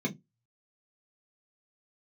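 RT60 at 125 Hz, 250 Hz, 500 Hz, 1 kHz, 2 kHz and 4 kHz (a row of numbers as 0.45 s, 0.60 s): 0.25 s, 0.25 s, 0.20 s, 0.15 s, 0.15 s, 0.15 s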